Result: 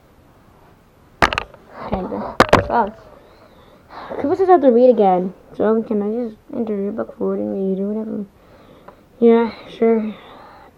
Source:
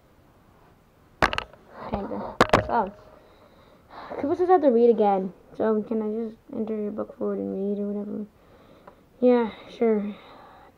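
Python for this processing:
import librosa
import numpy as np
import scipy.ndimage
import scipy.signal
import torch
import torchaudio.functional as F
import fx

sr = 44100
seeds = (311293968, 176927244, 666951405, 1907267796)

y = fx.wow_flutter(x, sr, seeds[0], rate_hz=2.1, depth_cents=120.0)
y = y * librosa.db_to_amplitude(7.0)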